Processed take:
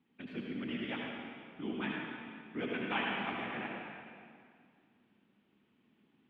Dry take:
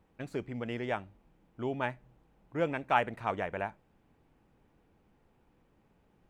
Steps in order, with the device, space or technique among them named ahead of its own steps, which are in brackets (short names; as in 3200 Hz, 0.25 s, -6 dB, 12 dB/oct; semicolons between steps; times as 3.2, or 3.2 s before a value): whispering ghost (whisperiser; HPF 270 Hz 12 dB/oct; reverb RT60 2.1 s, pre-delay 62 ms, DRR -2 dB); EQ curve 150 Hz 0 dB, 230 Hz +5 dB, 560 Hz -16 dB, 3400 Hz +1 dB, 7200 Hz -28 dB